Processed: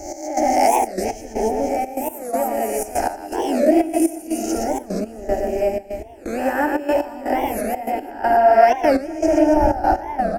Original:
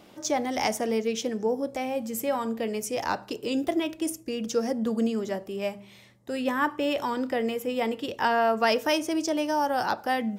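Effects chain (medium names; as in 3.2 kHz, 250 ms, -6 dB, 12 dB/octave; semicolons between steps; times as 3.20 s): reverse spectral sustain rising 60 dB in 0.77 s; wind noise 120 Hz -34 dBFS; treble shelf 3.9 kHz +6.5 dB, from 7.80 s -4 dB; reverse bouncing-ball echo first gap 120 ms, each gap 1.3×, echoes 5; trance gate "x..xxxx." 122 bpm -12 dB; high-order bell 510 Hz +11 dB; static phaser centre 720 Hz, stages 8; warped record 45 rpm, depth 250 cents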